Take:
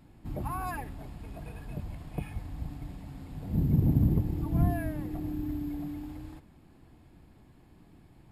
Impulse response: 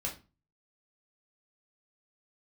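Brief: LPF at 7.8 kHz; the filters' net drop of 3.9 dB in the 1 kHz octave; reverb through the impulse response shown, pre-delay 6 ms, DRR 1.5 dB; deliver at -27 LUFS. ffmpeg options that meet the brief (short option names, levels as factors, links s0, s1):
-filter_complex "[0:a]lowpass=7800,equalizer=f=1000:t=o:g=-5.5,asplit=2[s0][s1];[1:a]atrim=start_sample=2205,adelay=6[s2];[s1][s2]afir=irnorm=-1:irlink=0,volume=0.668[s3];[s0][s3]amix=inputs=2:normalize=0,volume=1.06"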